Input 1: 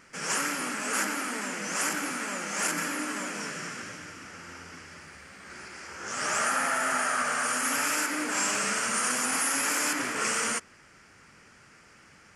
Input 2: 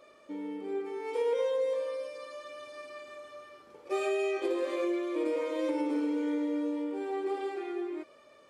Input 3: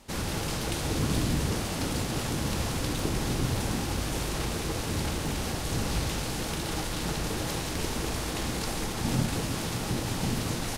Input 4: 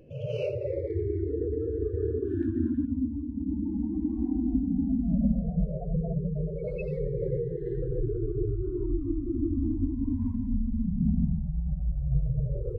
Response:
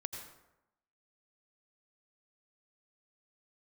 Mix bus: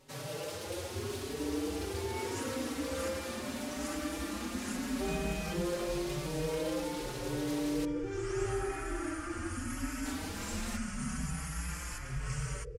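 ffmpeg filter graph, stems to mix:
-filter_complex "[0:a]adelay=2050,volume=0.224[s0];[1:a]alimiter=level_in=1.78:limit=0.0631:level=0:latency=1,volume=0.562,adelay=1100,volume=1.19[s1];[2:a]highpass=320,aeval=exprs='0.119*sin(PI/2*1.78*val(0)/0.119)':c=same,volume=0.188,asplit=3[s2][s3][s4];[s2]atrim=end=7.85,asetpts=PTS-STARTPTS,afade=t=out:st=7.846:d=0.004:c=hsin[s5];[s3]atrim=start=7.85:end=10.05,asetpts=PTS-STARTPTS,volume=0[s6];[s4]atrim=start=10.05,asetpts=PTS-STARTPTS,afade=t=in:d=0.004:c=hsin[s7];[s5][s6][s7]concat=n=3:v=0:a=1[s8];[3:a]volume=0.398[s9];[s0][s1][s8][s9]amix=inputs=4:normalize=0,asplit=2[s10][s11];[s11]adelay=4.9,afreqshift=0.81[s12];[s10][s12]amix=inputs=2:normalize=1"

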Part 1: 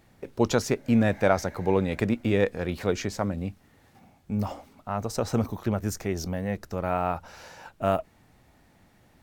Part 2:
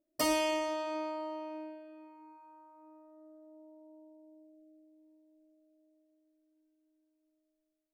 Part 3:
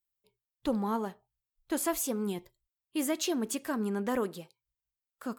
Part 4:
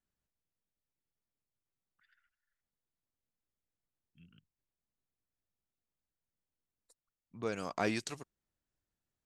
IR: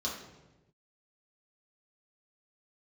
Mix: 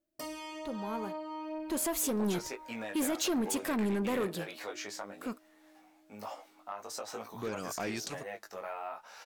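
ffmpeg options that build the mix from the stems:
-filter_complex "[0:a]highpass=650,acompressor=threshold=0.0282:ratio=6,flanger=delay=7.6:depth=2.9:regen=46:speed=1.4:shape=triangular,adelay=1800,volume=0.562[s0];[1:a]volume=0.944[s1];[2:a]dynaudnorm=f=480:g=7:m=4.47,alimiter=limit=0.168:level=0:latency=1:release=276,volume=0.266[s2];[3:a]acompressor=threshold=0.0141:ratio=2,volume=0.531[s3];[s0][s1]amix=inputs=2:normalize=0,flanger=delay=18:depth=2.2:speed=1.1,acompressor=threshold=0.00631:ratio=2.5,volume=1[s4];[s2][s3][s4]amix=inputs=3:normalize=0,dynaudnorm=f=760:g=3:m=2.82,asoftclip=type=tanh:threshold=0.0473"

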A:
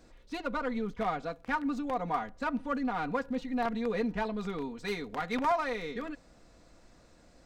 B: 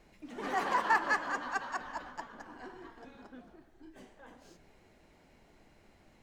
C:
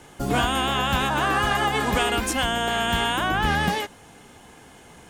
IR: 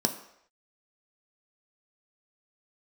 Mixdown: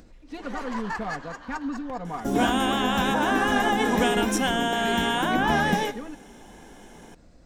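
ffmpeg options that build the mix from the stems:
-filter_complex "[0:a]lowshelf=f=340:g=9.5,acompressor=mode=upward:threshold=0.00794:ratio=2.5,volume=0.631[s0];[1:a]highshelf=f=4200:g=11,adynamicsmooth=sensitivity=6.5:basefreq=7800,volume=0.501[s1];[2:a]adelay=2050,volume=0.562,asplit=2[s2][s3];[s3]volume=0.266[s4];[3:a]atrim=start_sample=2205[s5];[s4][s5]afir=irnorm=-1:irlink=0[s6];[s0][s1][s2][s6]amix=inputs=4:normalize=0"

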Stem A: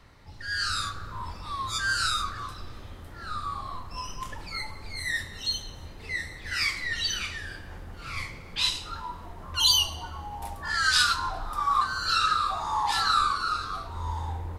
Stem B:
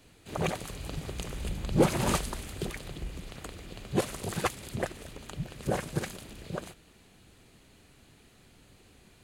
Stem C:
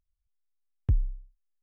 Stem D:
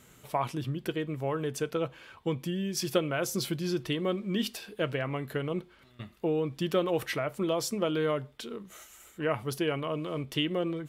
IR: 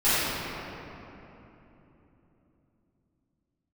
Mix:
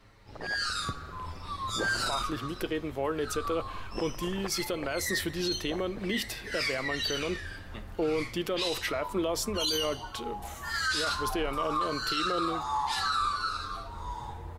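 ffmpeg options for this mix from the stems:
-filter_complex "[0:a]asplit=2[s0][s1];[s1]adelay=7,afreqshift=0.51[s2];[s0][s2]amix=inputs=2:normalize=1,volume=1[s3];[1:a]lowpass=2300,tremolo=f=110:d=0.857,volume=0.562[s4];[2:a]volume=1.33[s5];[3:a]adelay=1750,volume=1.33[s6];[s4][s5][s6]amix=inputs=3:normalize=0,highpass=250,alimiter=limit=0.119:level=0:latency=1:release=175,volume=1[s7];[s3][s7]amix=inputs=2:normalize=0,alimiter=limit=0.0891:level=0:latency=1:release=13"

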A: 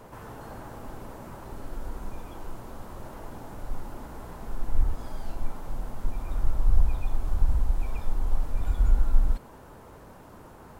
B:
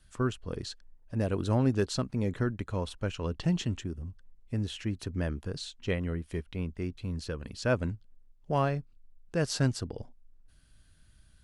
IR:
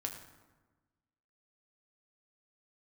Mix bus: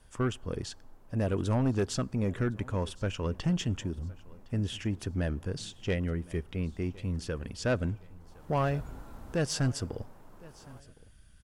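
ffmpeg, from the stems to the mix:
-filter_complex "[0:a]highpass=98,volume=0.376,afade=t=in:st=8.2:d=0.53:silence=0.223872[s0];[1:a]bandreject=f=4100:w=6.2,asoftclip=type=tanh:threshold=0.0708,volume=1.19,asplit=3[s1][s2][s3];[s2]volume=0.0891[s4];[s3]volume=0.0794[s5];[2:a]atrim=start_sample=2205[s6];[s4][s6]afir=irnorm=-1:irlink=0[s7];[s5]aecho=0:1:1062|2124|3186|4248|5310:1|0.38|0.144|0.0549|0.0209[s8];[s0][s1][s7][s8]amix=inputs=4:normalize=0"

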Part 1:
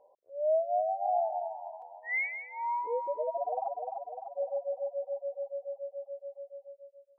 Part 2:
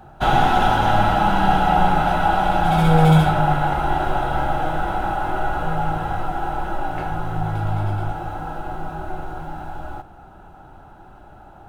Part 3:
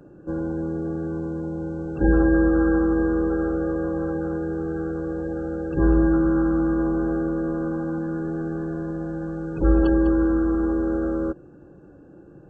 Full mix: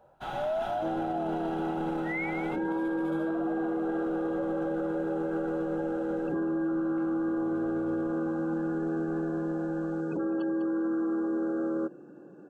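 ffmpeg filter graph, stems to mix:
-filter_complex "[0:a]volume=1.06[s0];[1:a]lowshelf=f=110:g=-11,volume=0.119[s1];[2:a]highpass=f=180:w=0.5412,highpass=f=180:w=1.3066,adelay=550,volume=0.891[s2];[s0][s1][s2]amix=inputs=3:normalize=0,alimiter=limit=0.0631:level=0:latency=1:release=16"

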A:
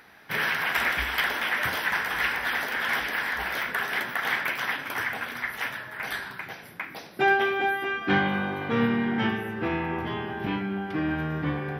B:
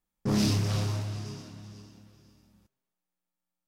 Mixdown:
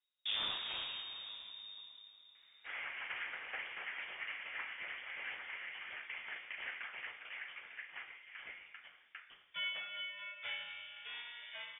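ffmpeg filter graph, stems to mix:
-filter_complex "[0:a]highpass=600,adelay=2350,volume=0.141[s0];[1:a]volume=0.668[s1];[s0][s1]amix=inputs=2:normalize=0,acrossover=split=330|3000[s2][s3][s4];[s2]acompressor=threshold=0.00398:ratio=6[s5];[s5][s3][s4]amix=inputs=3:normalize=0,lowpass=f=3200:t=q:w=0.5098,lowpass=f=3200:t=q:w=0.6013,lowpass=f=3200:t=q:w=0.9,lowpass=f=3200:t=q:w=2.563,afreqshift=-3800"

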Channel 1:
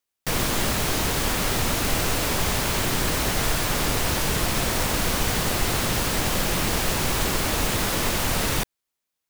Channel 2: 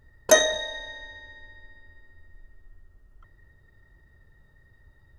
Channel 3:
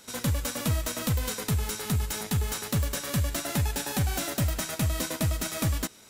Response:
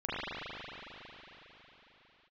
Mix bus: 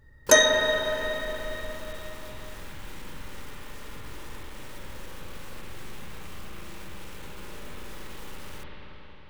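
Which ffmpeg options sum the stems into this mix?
-filter_complex "[0:a]aeval=exprs='(tanh(12.6*val(0)+0.45)-tanh(0.45))/12.6':c=same,volume=0.15,asplit=2[s0][s1];[s1]volume=0.376[s2];[1:a]volume=0.841,asplit=2[s3][s4];[s4]volume=0.501[s5];[2:a]adelay=2050,volume=0.2[s6];[s0][s6]amix=inputs=2:normalize=0,alimiter=level_in=9.44:limit=0.0631:level=0:latency=1,volume=0.106,volume=1[s7];[3:a]atrim=start_sample=2205[s8];[s2][s5]amix=inputs=2:normalize=0[s9];[s9][s8]afir=irnorm=-1:irlink=0[s10];[s3][s7][s10]amix=inputs=3:normalize=0,asuperstop=centerf=690:order=4:qfactor=5.6"

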